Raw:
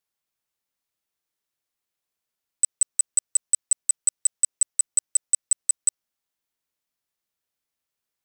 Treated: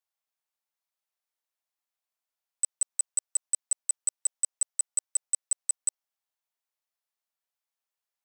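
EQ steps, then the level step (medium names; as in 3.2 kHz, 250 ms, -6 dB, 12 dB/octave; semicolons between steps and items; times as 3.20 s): resonant high-pass 700 Hz, resonance Q 1.5; -6.5 dB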